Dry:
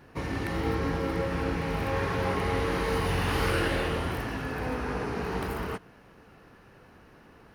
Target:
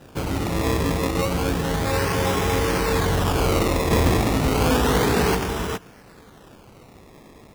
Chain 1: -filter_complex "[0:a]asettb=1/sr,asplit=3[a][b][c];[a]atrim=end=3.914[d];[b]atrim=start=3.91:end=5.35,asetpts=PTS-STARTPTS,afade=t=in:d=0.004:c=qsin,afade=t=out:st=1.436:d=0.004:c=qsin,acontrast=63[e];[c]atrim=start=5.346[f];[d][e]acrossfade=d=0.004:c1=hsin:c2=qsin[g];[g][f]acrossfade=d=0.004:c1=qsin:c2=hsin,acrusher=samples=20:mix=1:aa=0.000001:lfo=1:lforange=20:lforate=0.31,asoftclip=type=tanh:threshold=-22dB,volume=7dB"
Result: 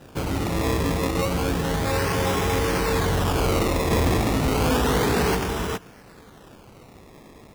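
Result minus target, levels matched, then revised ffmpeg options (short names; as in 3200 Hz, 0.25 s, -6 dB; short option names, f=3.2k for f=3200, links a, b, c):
soft clip: distortion +9 dB
-filter_complex "[0:a]asettb=1/sr,asplit=3[a][b][c];[a]atrim=end=3.914[d];[b]atrim=start=3.91:end=5.35,asetpts=PTS-STARTPTS,afade=t=in:d=0.004:c=qsin,afade=t=out:st=1.436:d=0.004:c=qsin,acontrast=63[e];[c]atrim=start=5.346[f];[d][e]acrossfade=d=0.004:c1=hsin:c2=qsin[g];[g][f]acrossfade=d=0.004:c1=qsin:c2=hsin,acrusher=samples=20:mix=1:aa=0.000001:lfo=1:lforange=20:lforate=0.31,asoftclip=type=tanh:threshold=-15.5dB,volume=7dB"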